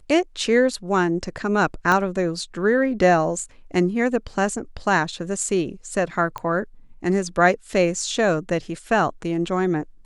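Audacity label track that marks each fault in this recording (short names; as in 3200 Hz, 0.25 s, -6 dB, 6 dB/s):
1.920000	1.920000	pop -8 dBFS
6.380000	6.380000	pop -17 dBFS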